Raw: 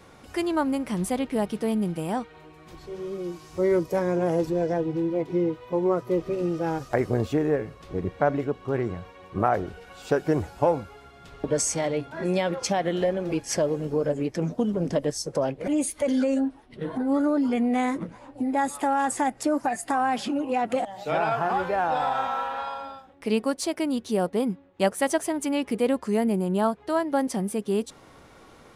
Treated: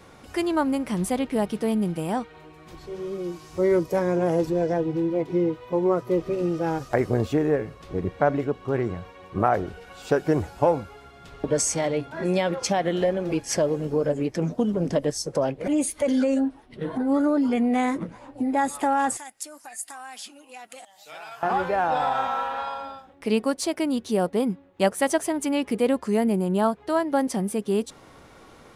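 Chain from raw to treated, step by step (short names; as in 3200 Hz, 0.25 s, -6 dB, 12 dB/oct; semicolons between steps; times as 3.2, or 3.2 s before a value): 19.17–21.43 pre-emphasis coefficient 0.97; gain +1.5 dB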